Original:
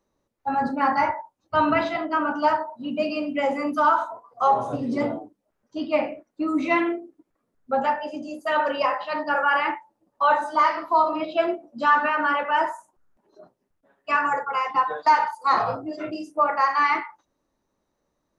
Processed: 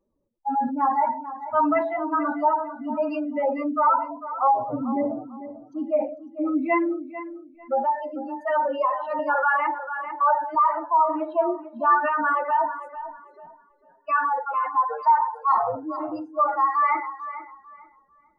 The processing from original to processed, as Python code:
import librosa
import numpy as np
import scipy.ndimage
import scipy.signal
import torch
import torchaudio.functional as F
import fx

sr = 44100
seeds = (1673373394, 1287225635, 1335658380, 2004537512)

y = fx.spec_expand(x, sr, power=2.2)
y = fx.echo_filtered(y, sr, ms=446, feedback_pct=24, hz=4600.0, wet_db=-13.0)
y = fx.band_squash(y, sr, depth_pct=40, at=(9.19, 10.55))